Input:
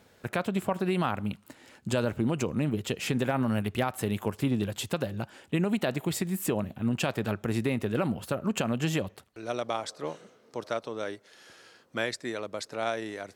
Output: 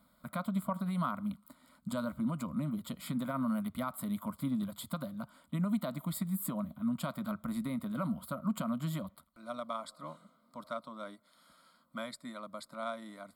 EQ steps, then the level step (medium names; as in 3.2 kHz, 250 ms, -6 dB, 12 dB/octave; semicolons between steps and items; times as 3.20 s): static phaser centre 540 Hz, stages 8; static phaser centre 1.7 kHz, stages 6; 0.0 dB